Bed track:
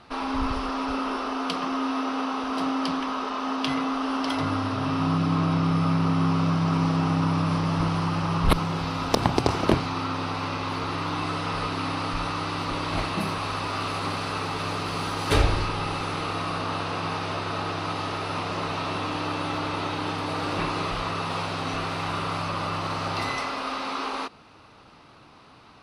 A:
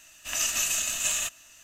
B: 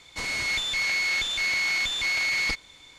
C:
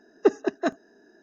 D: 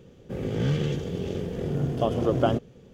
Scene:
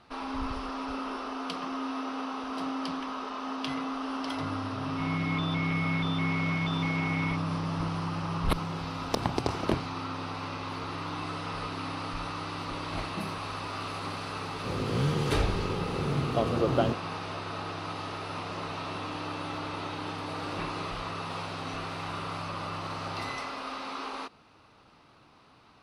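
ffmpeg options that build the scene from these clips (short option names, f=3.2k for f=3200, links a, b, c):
-filter_complex "[0:a]volume=-7dB[a];[2:a]aresample=8000,aresample=44100,atrim=end=2.98,asetpts=PTS-STARTPTS,volume=-10dB,afade=t=in:d=0.004:c=hsin,afade=t=out:st=2.976:d=0.004:c=hsin,adelay=212121S[b];[4:a]atrim=end=2.93,asetpts=PTS-STARTPTS,volume=-3dB,afade=t=in:d=0.004:c=hsin,afade=t=out:st=2.926:d=0.004:c=hsin,adelay=14350[c];[a][b][c]amix=inputs=3:normalize=0"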